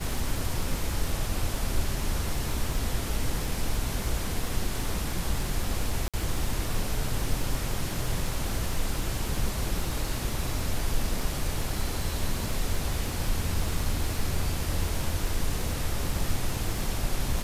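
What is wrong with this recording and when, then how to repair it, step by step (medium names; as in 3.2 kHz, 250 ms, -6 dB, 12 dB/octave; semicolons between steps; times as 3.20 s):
crackle 59 per s -33 dBFS
6.08–6.14 s: dropout 56 ms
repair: de-click; interpolate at 6.08 s, 56 ms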